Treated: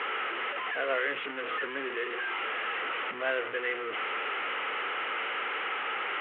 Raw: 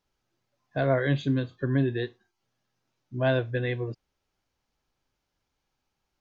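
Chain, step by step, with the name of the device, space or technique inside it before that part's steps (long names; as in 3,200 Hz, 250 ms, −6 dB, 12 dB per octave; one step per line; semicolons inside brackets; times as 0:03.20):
digital answering machine (band-pass filter 390–3,200 Hz; linear delta modulator 16 kbit/s, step −27 dBFS; loudspeaker in its box 420–3,400 Hz, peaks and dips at 450 Hz +7 dB, 640 Hz −5 dB, 940 Hz −3 dB, 1,300 Hz +9 dB, 2,000 Hz +7 dB, 2,900 Hz +7 dB)
level −3.5 dB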